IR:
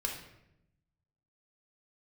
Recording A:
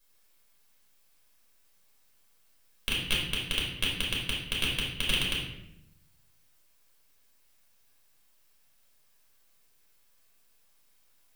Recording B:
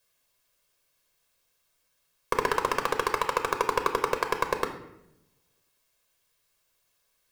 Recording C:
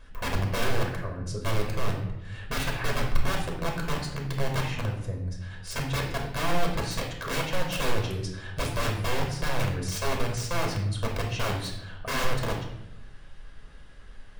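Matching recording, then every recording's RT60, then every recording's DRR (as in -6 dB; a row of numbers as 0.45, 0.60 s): C; 0.85, 0.85, 0.85 s; -5.0, 5.5, 0.0 dB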